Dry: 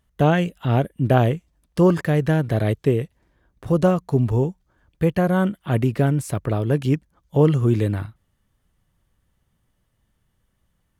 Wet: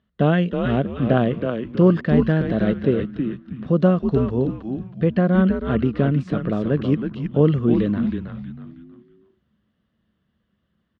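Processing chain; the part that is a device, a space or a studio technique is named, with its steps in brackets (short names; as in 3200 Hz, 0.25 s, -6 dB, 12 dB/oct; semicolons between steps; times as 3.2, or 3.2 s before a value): frequency-shifting delay pedal into a guitar cabinet (frequency-shifting echo 0.32 s, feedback 34%, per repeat -120 Hz, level -5 dB; speaker cabinet 91–3900 Hz, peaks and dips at 110 Hz -8 dB, 210 Hz +8 dB, 860 Hz -9 dB, 2300 Hz -6 dB)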